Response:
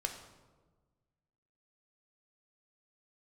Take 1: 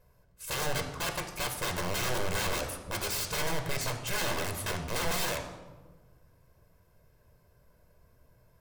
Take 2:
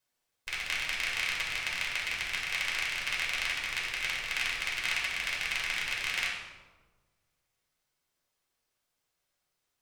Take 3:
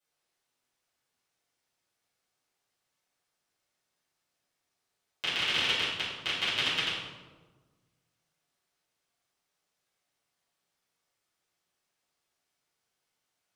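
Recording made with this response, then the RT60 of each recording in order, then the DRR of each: 1; 1.4, 1.3, 1.3 seconds; 3.5, −5.0, −12.0 decibels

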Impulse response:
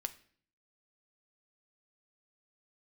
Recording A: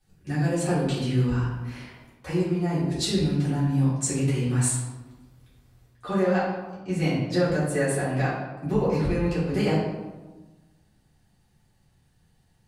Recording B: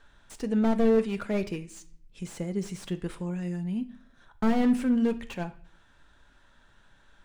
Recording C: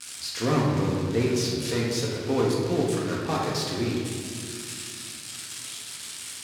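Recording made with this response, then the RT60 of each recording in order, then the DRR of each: B; 1.2, 0.50, 2.2 seconds; −11.0, 9.0, −4.5 decibels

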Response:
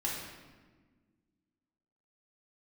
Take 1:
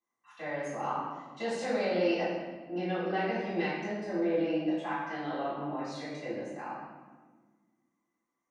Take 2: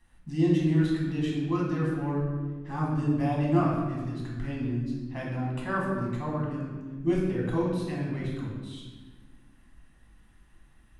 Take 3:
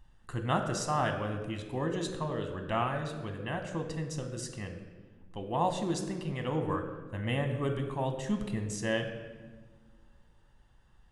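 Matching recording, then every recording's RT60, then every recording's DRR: 2; 1.4, 1.4, 1.5 seconds; −14.5, −5.0, 5.0 decibels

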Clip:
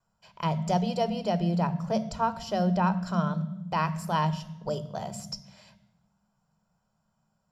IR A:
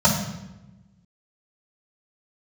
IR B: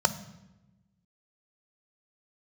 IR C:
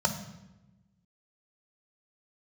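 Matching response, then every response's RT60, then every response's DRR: B; 0.95, 0.95, 0.95 seconds; −6.0, 9.0, 3.0 decibels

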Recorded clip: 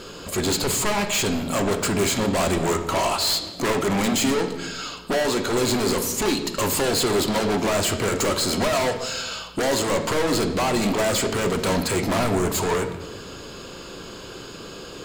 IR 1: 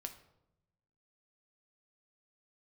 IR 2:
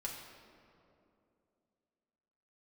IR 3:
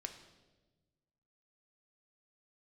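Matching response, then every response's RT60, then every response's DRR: 3; 0.90, 2.7, 1.2 seconds; 5.5, −3.5, 5.5 decibels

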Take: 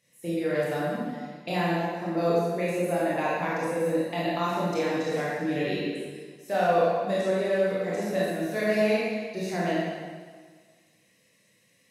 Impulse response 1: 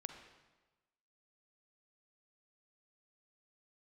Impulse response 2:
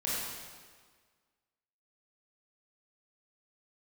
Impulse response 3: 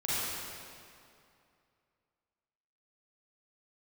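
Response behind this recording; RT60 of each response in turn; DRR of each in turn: 2; 1.2, 1.6, 2.5 seconds; 5.5, −8.0, −10.5 decibels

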